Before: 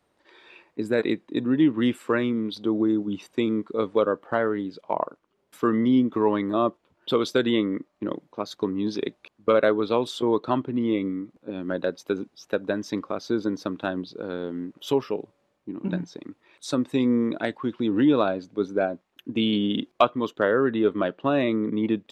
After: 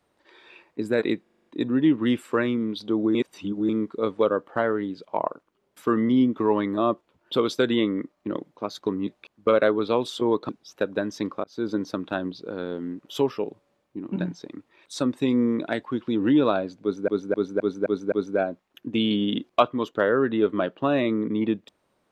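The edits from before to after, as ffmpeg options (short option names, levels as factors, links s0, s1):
-filter_complex "[0:a]asplit=17[s0][s1][s2][s3][s4][s5][s6][s7][s8][s9][s10][s11][s12][s13][s14][s15][s16];[s0]atrim=end=1.262[s17];[s1]atrim=start=1.218:end=1.262[s18];[s2]atrim=start=1.218:end=1.262[s19];[s3]atrim=start=1.218:end=1.262[s20];[s4]atrim=start=1.218:end=1.262[s21];[s5]atrim=start=1.218:end=1.262[s22];[s6]atrim=start=1.218:end=2.912[s23];[s7]atrim=start=2.908:end=3.452,asetpts=PTS-STARTPTS,areverse[s24];[s8]atrim=start=3.448:end=8.832[s25];[s9]atrim=start=9.078:end=10.502[s26];[s10]atrim=start=12.208:end=13.16,asetpts=PTS-STARTPTS,afade=t=out:st=0.948:d=0.004:c=hsin[s27];[s11]atrim=start=13.16:end=18.802,asetpts=PTS-STARTPTS,afade=t=in:d=0.26[s28];[s12]atrim=start=18.538:end=18.802[s29];[s13]atrim=start=18.538:end=18.802[s30];[s14]atrim=start=18.538:end=18.802[s31];[s15]atrim=start=18.538:end=18.802[s32];[s16]atrim=start=18.538[s33];[s17][s18]acrossfade=d=0.004:c1=hsin:c2=hsin[s34];[s34][s19]acrossfade=d=0.004:c1=hsin:c2=hsin[s35];[s35][s20]acrossfade=d=0.004:c1=hsin:c2=hsin[s36];[s36][s21]acrossfade=d=0.004:c1=hsin:c2=hsin[s37];[s37][s22]acrossfade=d=0.004:c1=hsin:c2=hsin[s38];[s38][s23]acrossfade=d=0.004:c1=hsin:c2=hsin[s39];[s39][s24]acrossfade=d=0.004:c1=hsin:c2=hsin[s40];[s40][s25]acrossfade=d=0.004:c1=hsin:c2=hsin[s41];[s41][s26]acrossfade=d=0.004:c1=hsin:c2=hsin[s42];[s27][s28]concat=n=2:v=0:a=1[s43];[s42][s43]acrossfade=d=0.004:c1=hsin:c2=hsin[s44];[s44][s29]acrossfade=d=0.004:c1=hsin:c2=hsin[s45];[s45][s30]acrossfade=d=0.004:c1=hsin:c2=hsin[s46];[s46][s31]acrossfade=d=0.004:c1=hsin:c2=hsin[s47];[s47][s32]acrossfade=d=0.004:c1=hsin:c2=hsin[s48];[s48][s33]acrossfade=d=0.004:c1=hsin:c2=hsin"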